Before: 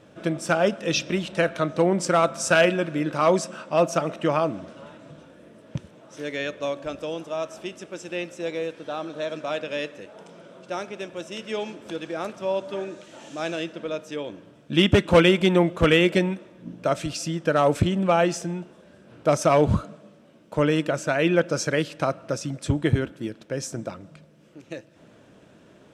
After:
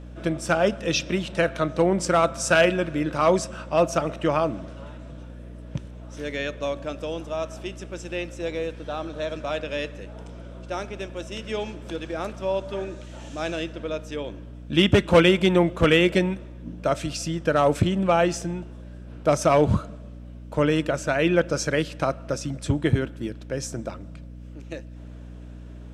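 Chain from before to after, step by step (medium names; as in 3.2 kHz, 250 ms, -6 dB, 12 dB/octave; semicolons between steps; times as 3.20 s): hum 60 Hz, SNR 15 dB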